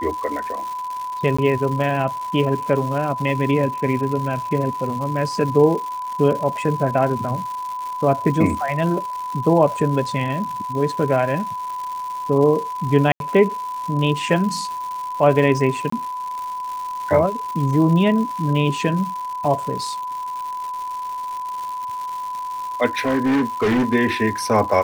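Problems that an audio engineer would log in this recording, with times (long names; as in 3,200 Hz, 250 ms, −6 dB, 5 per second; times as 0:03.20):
surface crackle 280 per second −28 dBFS
whistle 1,000 Hz −25 dBFS
0:01.37–0:01.39: drop-out 15 ms
0:13.12–0:13.20: drop-out 82 ms
0:15.90–0:15.92: drop-out 24 ms
0:22.97–0:23.95: clipping −15 dBFS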